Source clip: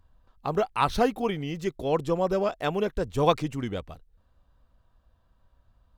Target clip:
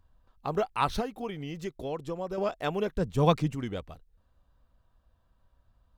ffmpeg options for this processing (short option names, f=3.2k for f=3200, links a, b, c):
-filter_complex "[0:a]asettb=1/sr,asplit=3[a][b][c];[a]atrim=end=1.004[d];[b]atrim=start=1:end=2.38,asetpts=PTS-STARTPTS,afade=t=in:d=0.004:c=qsin,afade=t=out:st=1.376:d=0.004:c=qsin,acompressor=threshold=-30dB:ratio=3[e];[c]atrim=start=2.376[f];[d][e]acrossfade=d=0.004:c1=hsin:c2=qsin[g];[g][f]acrossfade=d=0.004:c1=qsin:c2=hsin,asettb=1/sr,asplit=3[h][i][j];[h]atrim=end=2.914[k];[i]atrim=start=2.91:end=3.55,asetpts=PTS-STARTPTS,afade=t=in:d=0.004:c=qsin,afade=t=out:st=0.636:d=0.004:c=qsin,equalizer=f=170:w=1.7:g=9[l];[j]atrim=start=3.546[m];[k][l]acrossfade=d=0.004:c1=hsin:c2=qsin[n];[n][m]acrossfade=d=0.004:c1=qsin:c2=hsin,volume=-3dB"